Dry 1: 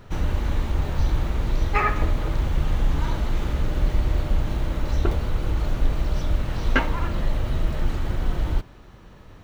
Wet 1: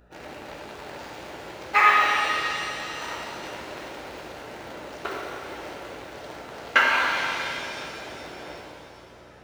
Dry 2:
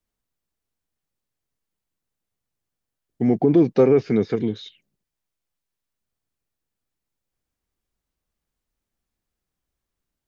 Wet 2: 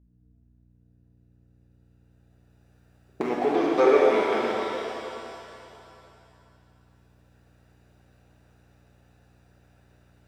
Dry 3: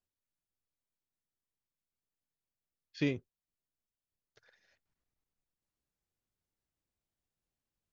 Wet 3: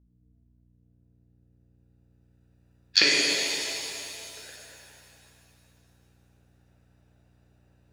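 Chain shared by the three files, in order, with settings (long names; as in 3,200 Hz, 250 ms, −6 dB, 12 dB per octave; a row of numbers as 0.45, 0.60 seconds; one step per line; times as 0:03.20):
adaptive Wiener filter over 41 samples
camcorder AGC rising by 11 dB per second
high-pass filter 890 Hz 12 dB per octave
mains hum 60 Hz, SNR 24 dB
reverb with rising layers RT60 2.8 s, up +7 semitones, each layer −8 dB, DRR −3.5 dB
loudness normalisation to −24 LKFS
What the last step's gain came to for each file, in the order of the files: +5.0, +5.0, +5.0 decibels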